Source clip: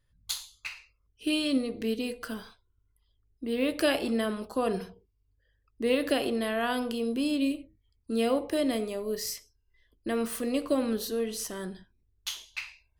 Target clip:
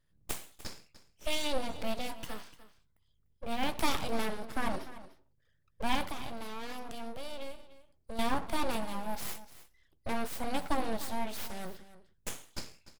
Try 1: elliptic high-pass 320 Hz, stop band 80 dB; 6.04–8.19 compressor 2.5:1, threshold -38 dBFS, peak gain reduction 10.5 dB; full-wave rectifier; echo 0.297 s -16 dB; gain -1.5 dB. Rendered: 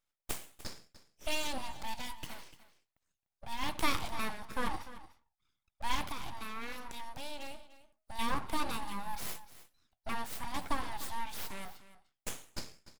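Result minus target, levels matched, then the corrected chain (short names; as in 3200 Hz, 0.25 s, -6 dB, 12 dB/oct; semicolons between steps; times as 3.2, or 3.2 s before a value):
250 Hz band -3.5 dB
6.04–8.19 compressor 2.5:1, threshold -38 dBFS, peak gain reduction 11.5 dB; full-wave rectifier; echo 0.297 s -16 dB; gain -1.5 dB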